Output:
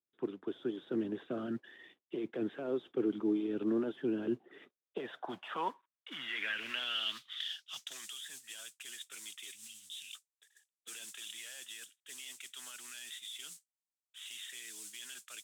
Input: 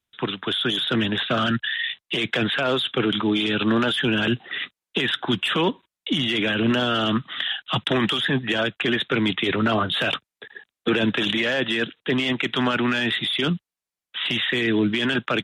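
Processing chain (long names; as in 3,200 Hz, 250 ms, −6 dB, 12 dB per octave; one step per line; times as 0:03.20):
0:09.52–0:10.15: inverse Chebyshev band-stop filter 420–1,400 Hz, stop band 40 dB
noise that follows the level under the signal 14 dB
band-pass filter sweep 350 Hz → 7,800 Hz, 0:04.50–0:08.11
level −7 dB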